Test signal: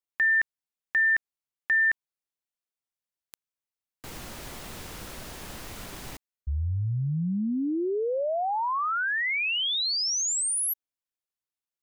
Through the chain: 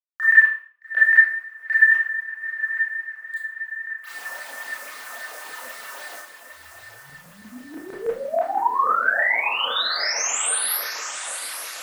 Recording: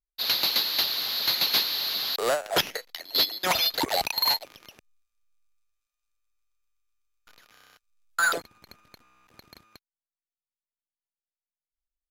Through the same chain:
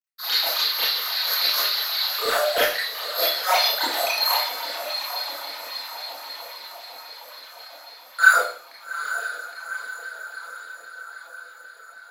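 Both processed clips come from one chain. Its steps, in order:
feedback delay with all-pass diffusion 840 ms, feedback 61%, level −9 dB
log-companded quantiser 8 bits
all-pass phaser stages 8, 3.7 Hz, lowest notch 100–1,000 Hz
auto-filter high-pass saw down 6.2 Hz 480–1,700 Hz
four-comb reverb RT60 0.45 s, combs from 25 ms, DRR −7.5 dB
level −3 dB

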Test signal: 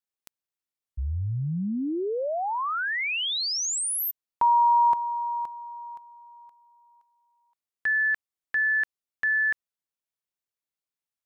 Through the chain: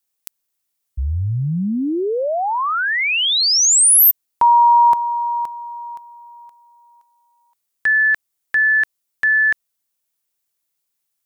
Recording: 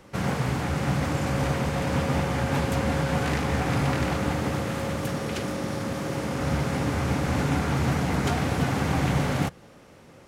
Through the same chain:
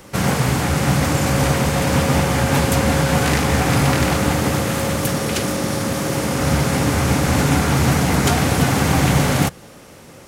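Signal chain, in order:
high-shelf EQ 5,800 Hz +11.5 dB
level +8 dB

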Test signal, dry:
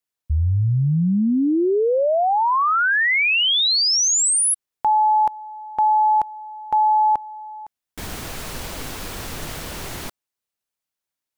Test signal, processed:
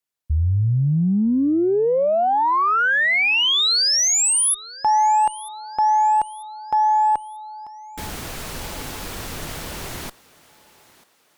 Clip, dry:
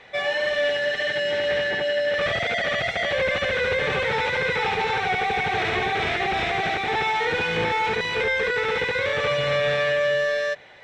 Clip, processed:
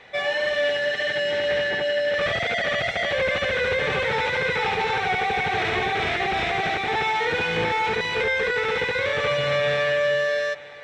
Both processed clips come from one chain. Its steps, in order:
feedback echo with a high-pass in the loop 941 ms, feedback 41%, high-pass 300 Hz, level −20 dB
harmonic generator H 4 −31 dB, 6 −37 dB, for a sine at −11 dBFS

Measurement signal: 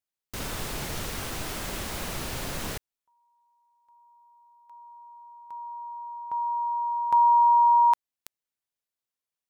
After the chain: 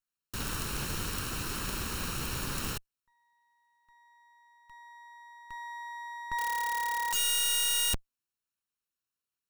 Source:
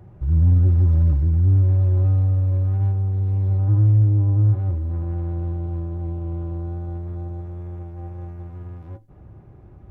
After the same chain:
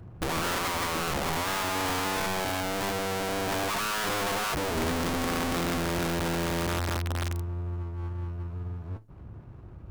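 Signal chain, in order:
lower of the sound and its delayed copy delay 0.72 ms
wrap-around overflow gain 24.5 dB

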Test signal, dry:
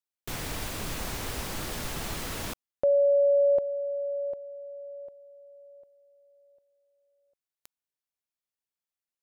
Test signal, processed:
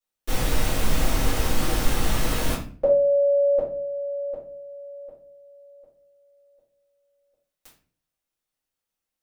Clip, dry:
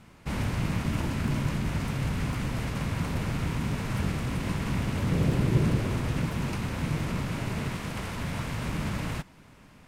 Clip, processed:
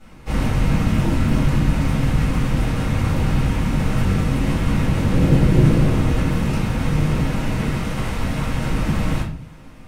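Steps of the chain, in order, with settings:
rectangular room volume 38 cubic metres, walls mixed, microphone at 2.2 metres
level −4 dB

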